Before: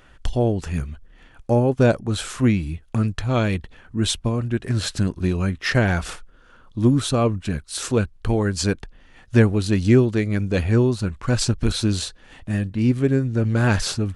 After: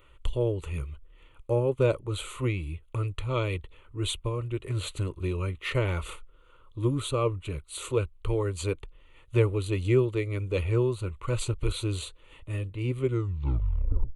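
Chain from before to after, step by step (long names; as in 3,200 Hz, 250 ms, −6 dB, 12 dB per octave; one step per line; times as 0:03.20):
turntable brake at the end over 1.15 s
phaser with its sweep stopped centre 1,100 Hz, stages 8
level −4 dB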